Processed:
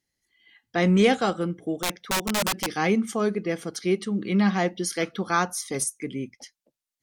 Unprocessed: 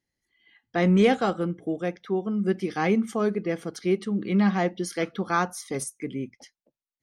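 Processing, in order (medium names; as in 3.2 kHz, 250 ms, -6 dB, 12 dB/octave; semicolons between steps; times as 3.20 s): 1.74–2.69 s: integer overflow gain 22 dB; peaking EQ 8.9 kHz +7 dB 2.9 oct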